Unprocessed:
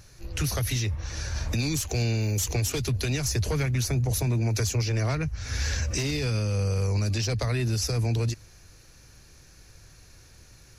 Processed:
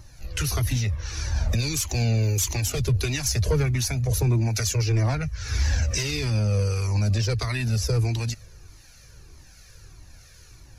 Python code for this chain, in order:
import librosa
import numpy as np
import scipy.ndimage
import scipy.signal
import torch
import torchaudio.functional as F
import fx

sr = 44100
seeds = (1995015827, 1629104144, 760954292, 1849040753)

y = fx.harmonic_tremolo(x, sr, hz=1.4, depth_pct=50, crossover_hz=1100.0)
y = fx.comb_cascade(y, sr, direction='falling', hz=1.6)
y = y * 10.0 ** (8.5 / 20.0)